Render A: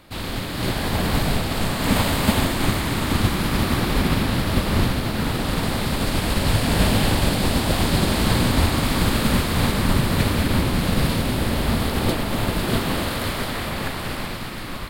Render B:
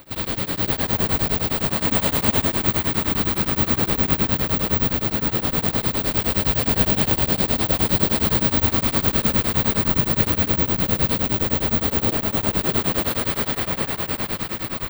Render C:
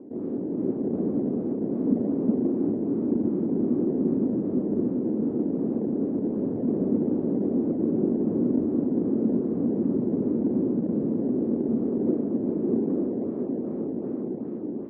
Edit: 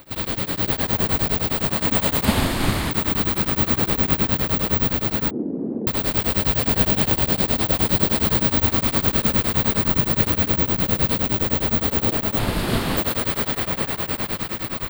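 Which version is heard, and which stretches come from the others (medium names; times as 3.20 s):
B
2.25–2.91 s: from A
5.31–5.87 s: from C
12.39–12.97 s: from A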